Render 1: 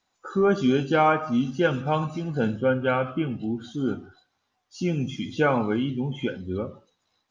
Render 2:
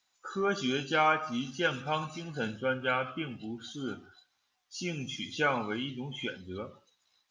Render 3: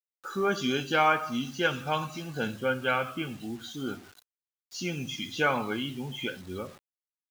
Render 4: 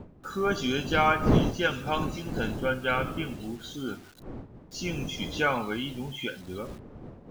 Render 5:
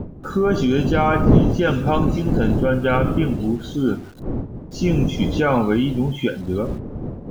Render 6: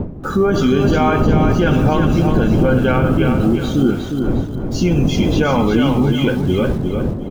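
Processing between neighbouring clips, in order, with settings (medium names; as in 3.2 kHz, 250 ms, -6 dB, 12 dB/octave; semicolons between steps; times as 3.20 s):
tilt shelf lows -7.5 dB, about 1.1 kHz; trim -4.5 dB
bit crusher 9-bit; trim +2.5 dB
wind noise 300 Hz -34 dBFS
tilt shelf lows +7.5 dB; in parallel at -1 dB: compressor with a negative ratio -25 dBFS, ratio -0.5; on the sum: trim +2 dB
peak limiter -14 dBFS, peak gain reduction 11 dB; on a send: feedback delay 358 ms, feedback 34%, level -5.5 dB; on the sum: trim +7 dB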